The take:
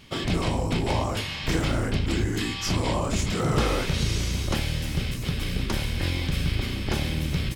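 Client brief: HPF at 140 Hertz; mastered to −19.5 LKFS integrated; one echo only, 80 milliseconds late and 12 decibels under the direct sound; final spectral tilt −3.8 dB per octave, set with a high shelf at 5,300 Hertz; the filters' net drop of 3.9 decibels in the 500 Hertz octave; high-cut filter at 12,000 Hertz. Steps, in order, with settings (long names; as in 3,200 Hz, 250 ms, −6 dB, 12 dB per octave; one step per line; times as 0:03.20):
high-pass filter 140 Hz
low-pass filter 12,000 Hz
parametric band 500 Hz −5 dB
high-shelf EQ 5,300 Hz +4 dB
single-tap delay 80 ms −12 dB
level +9 dB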